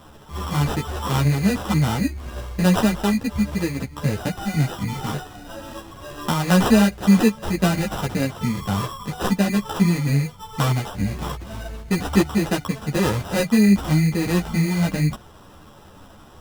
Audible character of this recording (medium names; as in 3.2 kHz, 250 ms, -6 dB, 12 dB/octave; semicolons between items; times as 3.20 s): aliases and images of a low sample rate 2.2 kHz, jitter 0%; a shimmering, thickened sound